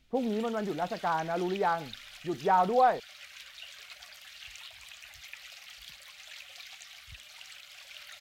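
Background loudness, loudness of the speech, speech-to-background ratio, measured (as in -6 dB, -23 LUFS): -46.0 LUFS, -29.5 LUFS, 16.5 dB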